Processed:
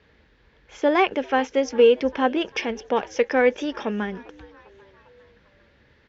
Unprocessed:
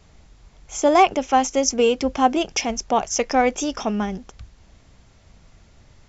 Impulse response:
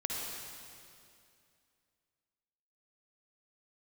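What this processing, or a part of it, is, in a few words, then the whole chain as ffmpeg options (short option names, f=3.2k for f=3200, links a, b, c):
frequency-shifting delay pedal into a guitar cabinet: -filter_complex "[0:a]asplit=5[a][b][c][d][e];[b]adelay=399,afreqshift=94,volume=-23dB[f];[c]adelay=798,afreqshift=188,volume=-28dB[g];[d]adelay=1197,afreqshift=282,volume=-33.1dB[h];[e]adelay=1596,afreqshift=376,volume=-38.1dB[i];[a][f][g][h][i]amix=inputs=5:normalize=0,highpass=81,equalizer=f=100:t=q:w=4:g=-9,equalizer=f=160:t=q:w=4:g=-8,equalizer=f=480:t=q:w=4:g=7,equalizer=f=700:t=q:w=4:g=-9,equalizer=f=1.2k:t=q:w=4:g=-4,equalizer=f=1.7k:t=q:w=4:g=10,lowpass=f=4k:w=0.5412,lowpass=f=4k:w=1.3066,volume=-2dB"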